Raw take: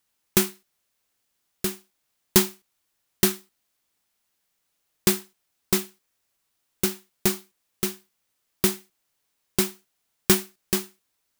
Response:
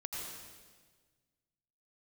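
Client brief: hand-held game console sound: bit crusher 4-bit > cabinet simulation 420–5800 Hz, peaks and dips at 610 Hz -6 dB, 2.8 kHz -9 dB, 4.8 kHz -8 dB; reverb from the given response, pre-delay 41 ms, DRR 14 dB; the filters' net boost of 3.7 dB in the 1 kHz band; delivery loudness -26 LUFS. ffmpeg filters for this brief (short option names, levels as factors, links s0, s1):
-filter_complex "[0:a]equalizer=f=1000:t=o:g=5.5,asplit=2[s0][s1];[1:a]atrim=start_sample=2205,adelay=41[s2];[s1][s2]afir=irnorm=-1:irlink=0,volume=0.188[s3];[s0][s3]amix=inputs=2:normalize=0,acrusher=bits=3:mix=0:aa=0.000001,highpass=420,equalizer=f=610:t=q:w=4:g=-6,equalizer=f=2800:t=q:w=4:g=-9,equalizer=f=4800:t=q:w=4:g=-8,lowpass=f=5800:w=0.5412,lowpass=f=5800:w=1.3066,volume=2.11"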